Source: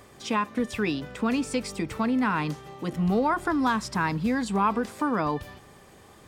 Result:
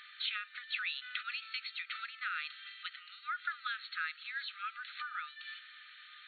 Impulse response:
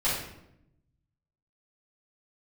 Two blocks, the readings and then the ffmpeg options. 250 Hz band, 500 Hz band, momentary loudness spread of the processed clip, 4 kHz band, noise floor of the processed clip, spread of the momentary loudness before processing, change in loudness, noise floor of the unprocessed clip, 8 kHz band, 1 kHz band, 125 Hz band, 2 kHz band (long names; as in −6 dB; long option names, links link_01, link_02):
below −40 dB, below −40 dB, 9 LU, −0.5 dB, −56 dBFS, 7 LU, −13.0 dB, −52 dBFS, below −40 dB, −16.0 dB, below −40 dB, −5.0 dB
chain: -af "highshelf=frequency=3000:gain=11.5,acompressor=threshold=-31dB:ratio=6,afftfilt=real='re*between(b*sr/4096,1200,4400)':imag='im*between(b*sr/4096,1200,4400)':win_size=4096:overlap=0.75,volume=1.5dB"